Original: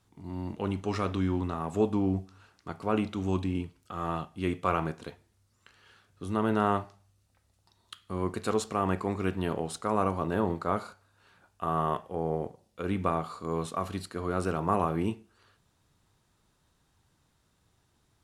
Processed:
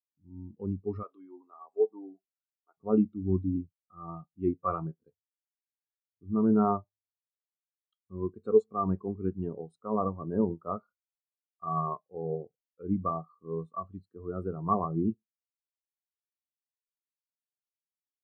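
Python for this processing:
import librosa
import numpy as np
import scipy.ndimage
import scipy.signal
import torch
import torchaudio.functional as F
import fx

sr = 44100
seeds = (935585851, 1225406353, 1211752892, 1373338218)

y = fx.highpass(x, sr, hz=490.0, slope=12, at=(1.03, 2.77))
y = fx.spectral_expand(y, sr, expansion=2.5)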